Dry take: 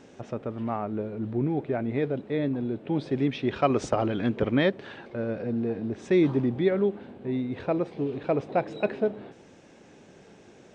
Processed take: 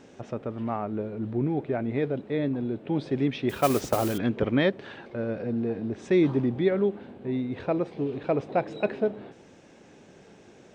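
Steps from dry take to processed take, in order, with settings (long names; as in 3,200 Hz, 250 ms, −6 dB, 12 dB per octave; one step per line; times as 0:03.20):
0:03.49–0:04.18: noise that follows the level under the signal 14 dB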